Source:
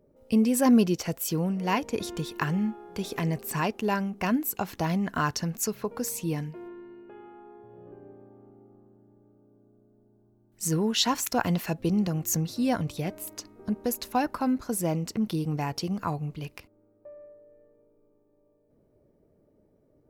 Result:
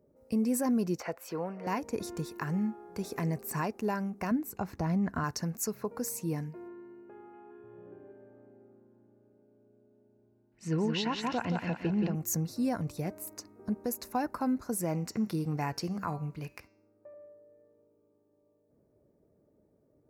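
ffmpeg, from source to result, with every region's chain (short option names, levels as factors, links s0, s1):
-filter_complex "[0:a]asettb=1/sr,asplit=3[s0][s1][s2];[s0]atrim=end=1.004[s3];[s1]atrim=start=1:end=1.67,asetpts=PTS-STARTPTS,afade=t=in:d=0.004:c=qsin,afade=t=out:st=0.666:d=0.004:c=qsin,acontrast=52,acrossover=split=460 3400:gain=0.126 1 0.0891[s4][s5][s6];[s4][s5][s6]amix=inputs=3:normalize=0[s7];[s2]atrim=start=1.666[s8];[s3][s7]acrossfade=d=0.004:c1=hsin:c2=qsin[s9];[s9][s8]acrossfade=d=0.004:c1=qsin:c2=hsin,asettb=1/sr,asplit=3[s10][s11][s12];[s10]atrim=end=4.314[s13];[s11]atrim=start=4.31:end=5.24,asetpts=PTS-STARTPTS,afade=t=in:d=0.004:c=qsin,afade=t=out:st=0.926:d=0.004:c=qsin,lowpass=f=3800:p=1,lowshelf=f=130:g=11[s14];[s12]atrim=start=5.236[s15];[s13][s14]acrossfade=d=0.004:c1=hsin:c2=qsin[s16];[s16][s15]acrossfade=d=0.004:c1=qsin:c2=hsin,asettb=1/sr,asplit=3[s17][s18][s19];[s17]atrim=end=7.334[s20];[s18]atrim=start=7.33:end=12.15,asetpts=PTS-STARTPTS,afade=t=in:d=0.004:c=qsin,afade=t=out:st=4.816:d=0.004:c=qsin,lowpass=f=2900:t=q:w=3.2,bandreject=f=1200:w=16,aecho=1:1:175|350|525|700|875:0.562|0.208|0.077|0.0285|0.0105,atrim=end_sample=212562[s21];[s19]atrim=start=12.146[s22];[s20][s21]acrossfade=d=0.004:c1=hsin:c2=qsin[s23];[s23][s22]acrossfade=d=0.004:c1=qsin:c2=hsin,asettb=1/sr,asplit=3[s24][s25][s26];[s24]atrim=end=14.804[s27];[s25]atrim=start=14.8:end=17.14,asetpts=PTS-STARTPTS,afade=t=in:d=0.004:c=qsin,afade=t=out:st=2.336:d=0.004:c=qsin,equalizer=f=2100:t=o:w=1.8:g=5.5,bandreject=f=194.5:t=h:w=4,bandreject=f=389:t=h:w=4,bandreject=f=583.5:t=h:w=4,bandreject=f=778:t=h:w=4,bandreject=f=972.5:t=h:w=4,bandreject=f=1167:t=h:w=4,bandreject=f=1361.5:t=h:w=4,bandreject=f=1556:t=h:w=4,bandreject=f=1750.5:t=h:w=4,bandreject=f=1945:t=h:w=4,bandreject=f=2139.5:t=h:w=4,bandreject=f=2334:t=h:w=4,bandreject=f=2528.5:t=h:w=4,bandreject=f=2723:t=h:w=4,bandreject=f=2917.5:t=h:w=4,bandreject=f=3112:t=h:w=4,bandreject=f=3306.5:t=h:w=4,bandreject=f=3501:t=h:w=4,bandreject=f=3695.5:t=h:w=4,bandreject=f=3890:t=h:w=4,bandreject=f=4084.5:t=h:w=4,bandreject=f=4279:t=h:w=4,bandreject=f=4473.5:t=h:w=4,bandreject=f=4668:t=h:w=4,bandreject=f=4862.5:t=h:w=4,bandreject=f=5057:t=h:w=4,bandreject=f=5251.5:t=h:w=4,bandreject=f=5446:t=h:w=4,bandreject=f=5640.5:t=h:w=4,bandreject=f=5835:t=h:w=4,bandreject=f=6029.5:t=h:w=4,bandreject=f=6224:t=h:w=4,bandreject=f=6418.5:t=h:w=4,bandreject=f=6613:t=h:w=4,bandreject=f=6807.5:t=h:w=4,bandreject=f=7002:t=h:w=4,bandreject=f=7196.5:t=h:w=4,bandreject=f=7391:t=h:w=4,bandreject=f=7585.5:t=h:w=4[s28];[s26]atrim=start=17.136[s29];[s27][s28]acrossfade=d=0.004:c1=hsin:c2=qsin[s30];[s30][s29]acrossfade=d=0.004:c1=qsin:c2=hsin,highpass=52,equalizer=f=3200:t=o:w=0.52:g=-15,alimiter=limit=0.126:level=0:latency=1:release=135,volume=0.668"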